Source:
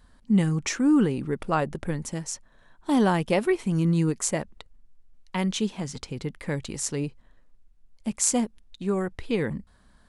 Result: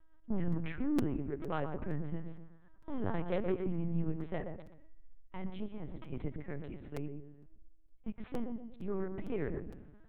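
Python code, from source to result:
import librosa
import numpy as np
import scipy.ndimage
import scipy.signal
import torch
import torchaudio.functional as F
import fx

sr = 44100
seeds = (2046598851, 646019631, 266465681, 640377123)

y = scipy.signal.sosfilt(scipy.signal.bessel(6, 2000.0, 'lowpass', norm='mag', fs=sr, output='sos'), x)
y = fx.low_shelf(y, sr, hz=130.0, db=5.5)
y = fx.tremolo_random(y, sr, seeds[0], hz=3.5, depth_pct=55)
y = fx.comb_fb(y, sr, f0_hz=140.0, decay_s=1.9, harmonics='all', damping=0.0, mix_pct=50)
y = 10.0 ** (-27.5 / 20.0) * np.tanh(y / 10.0 ** (-27.5 / 20.0))
y = fx.echo_filtered(y, sr, ms=124, feedback_pct=40, hz=820.0, wet_db=-4.5)
y = fx.lpc_vocoder(y, sr, seeds[1], excitation='pitch_kept', order=8)
y = fx.buffer_crackle(y, sr, first_s=0.52, period_s=0.46, block=256, kind='repeat')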